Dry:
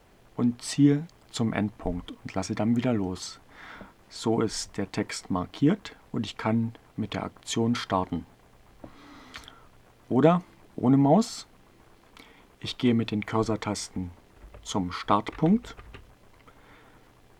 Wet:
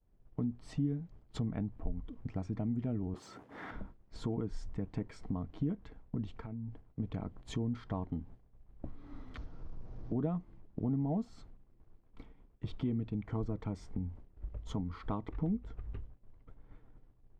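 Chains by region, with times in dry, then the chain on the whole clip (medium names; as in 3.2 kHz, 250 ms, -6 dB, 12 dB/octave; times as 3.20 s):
3.14–3.71 s: waveshaping leveller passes 2 + dynamic bell 4.1 kHz, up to -6 dB, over -48 dBFS, Q 1.7 + high-pass 270 Hz
6.40–7.00 s: compression 8:1, threshold -40 dBFS + loudspeaker Doppler distortion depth 0.11 ms
9.37–10.12 s: one-bit delta coder 32 kbps, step -27.5 dBFS + peaking EQ 2.7 kHz -9.5 dB 2.1 oct + feedback comb 160 Hz, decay 1.5 s, mix 80%
whole clip: expander -44 dBFS; tilt EQ -4.5 dB/octave; compression 2.5:1, threshold -34 dBFS; trim -5.5 dB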